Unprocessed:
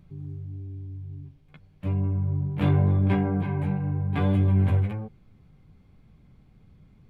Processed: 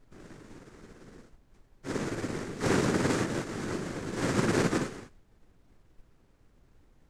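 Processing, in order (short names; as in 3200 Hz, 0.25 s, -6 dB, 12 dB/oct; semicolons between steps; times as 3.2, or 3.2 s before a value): sample sorter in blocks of 256 samples; flange 1.3 Hz, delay 4.3 ms, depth 3.6 ms, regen -80%; noise vocoder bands 3; added noise brown -47 dBFS; upward expander 1.5:1, over -47 dBFS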